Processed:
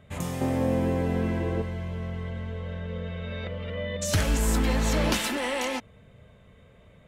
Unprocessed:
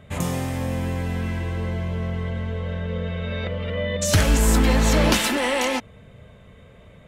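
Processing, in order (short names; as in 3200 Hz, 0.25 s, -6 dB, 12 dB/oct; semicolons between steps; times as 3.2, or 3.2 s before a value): 0.41–1.62 bell 400 Hz +12.5 dB 2.6 oct; gain -6.5 dB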